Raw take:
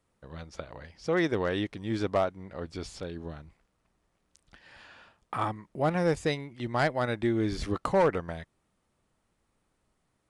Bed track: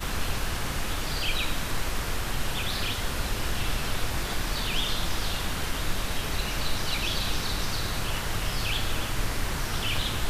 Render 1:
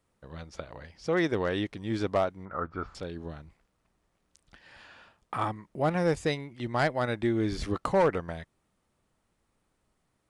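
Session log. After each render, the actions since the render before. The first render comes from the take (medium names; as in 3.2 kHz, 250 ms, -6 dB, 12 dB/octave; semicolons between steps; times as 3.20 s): 2.45–2.95 s: resonant low-pass 1.3 kHz, resonance Q 9.5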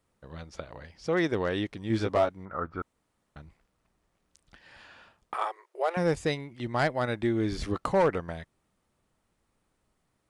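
1.88–2.29 s: doubling 18 ms -3.5 dB; 2.82–3.36 s: room tone; 5.34–5.97 s: brick-wall FIR high-pass 350 Hz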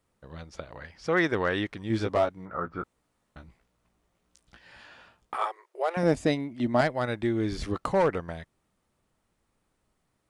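0.76–1.83 s: peaking EQ 1.5 kHz +7 dB 1.5 oct; 2.35–5.46 s: doubling 17 ms -5 dB; 6.03–6.81 s: small resonant body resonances 260/630 Hz, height 12 dB, ringing for 40 ms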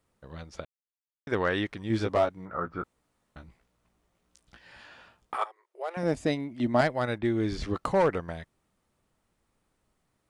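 0.65–1.27 s: mute; 5.44–6.63 s: fade in, from -15 dB; 7.18–7.73 s: level-controlled noise filter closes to 2.4 kHz, open at -23 dBFS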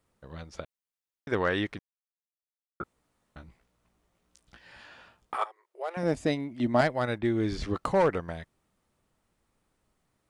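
1.79–2.80 s: mute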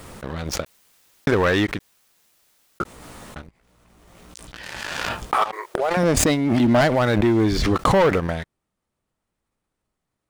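waveshaping leveller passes 3; swell ahead of each attack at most 25 dB/s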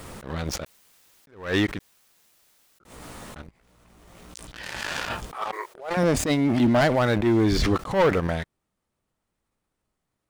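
peak limiter -14.5 dBFS, peak gain reduction 10.5 dB; attacks held to a fixed rise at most 140 dB/s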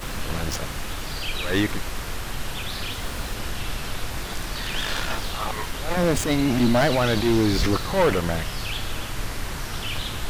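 add bed track -1 dB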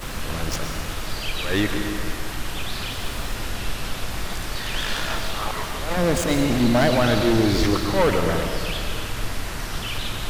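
algorithmic reverb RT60 2.1 s, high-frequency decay 0.85×, pre-delay 80 ms, DRR 4.5 dB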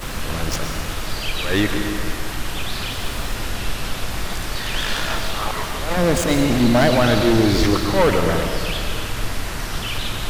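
trim +3 dB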